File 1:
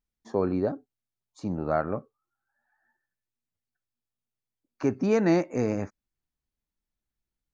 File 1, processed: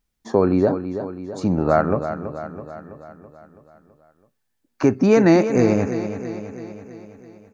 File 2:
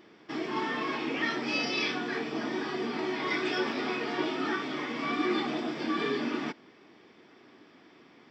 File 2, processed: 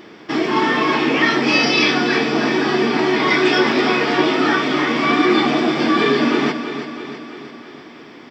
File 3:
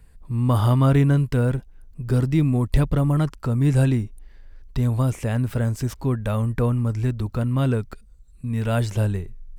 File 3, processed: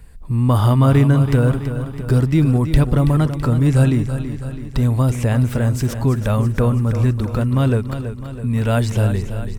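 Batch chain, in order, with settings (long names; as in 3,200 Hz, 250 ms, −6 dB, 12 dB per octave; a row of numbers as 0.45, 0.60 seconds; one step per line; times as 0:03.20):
in parallel at +0.5 dB: downward compressor, threshold −27 dBFS
on the sum: repeating echo 329 ms, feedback 57%, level −10 dB
normalise the peak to −3 dBFS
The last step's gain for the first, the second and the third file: +5.0, +9.0, +2.0 decibels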